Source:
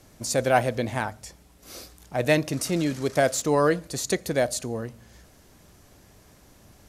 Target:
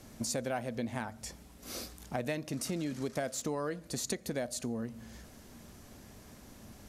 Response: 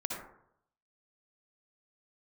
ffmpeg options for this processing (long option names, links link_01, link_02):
-af "equalizer=frequency=230:width_type=o:width=0.3:gain=9,acompressor=threshold=-33dB:ratio=6"